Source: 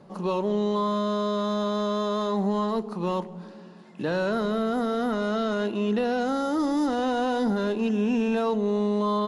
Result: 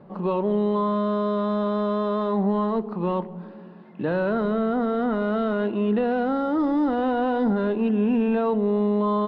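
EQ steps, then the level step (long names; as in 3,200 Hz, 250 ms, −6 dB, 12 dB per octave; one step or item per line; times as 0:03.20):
high-frequency loss of the air 440 metres
+3.5 dB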